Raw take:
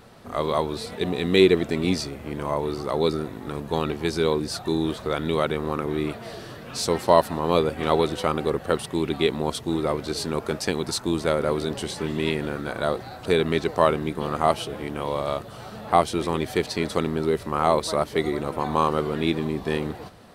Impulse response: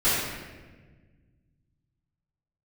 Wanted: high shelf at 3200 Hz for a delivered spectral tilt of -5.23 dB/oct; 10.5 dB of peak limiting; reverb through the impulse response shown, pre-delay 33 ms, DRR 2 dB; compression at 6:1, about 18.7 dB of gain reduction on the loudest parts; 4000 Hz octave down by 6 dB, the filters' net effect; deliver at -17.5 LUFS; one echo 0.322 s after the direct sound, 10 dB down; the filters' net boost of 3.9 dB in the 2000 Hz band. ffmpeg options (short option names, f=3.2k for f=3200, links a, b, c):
-filter_complex "[0:a]equalizer=f=2k:t=o:g=8.5,highshelf=f=3.2k:g=-8,equalizer=f=4k:t=o:g=-4.5,acompressor=threshold=-32dB:ratio=6,alimiter=level_in=1dB:limit=-24dB:level=0:latency=1,volume=-1dB,aecho=1:1:322:0.316,asplit=2[a][b];[1:a]atrim=start_sample=2205,adelay=33[c];[b][c]afir=irnorm=-1:irlink=0,volume=-18dB[d];[a][d]amix=inputs=2:normalize=0,volume=18dB"